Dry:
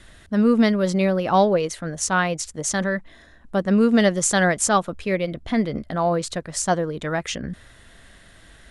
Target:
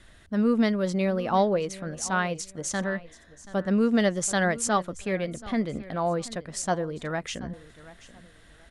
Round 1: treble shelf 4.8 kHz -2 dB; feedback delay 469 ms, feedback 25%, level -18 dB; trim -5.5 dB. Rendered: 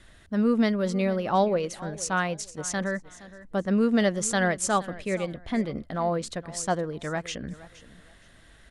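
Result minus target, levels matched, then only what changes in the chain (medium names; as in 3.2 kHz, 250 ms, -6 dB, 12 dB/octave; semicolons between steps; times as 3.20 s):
echo 262 ms early
change: feedback delay 731 ms, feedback 25%, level -18 dB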